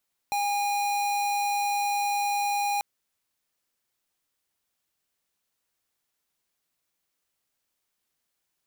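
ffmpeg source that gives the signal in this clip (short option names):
-f lavfi -i "aevalsrc='0.0473*(2*lt(mod(815*t,1),0.5)-1)':d=2.49:s=44100"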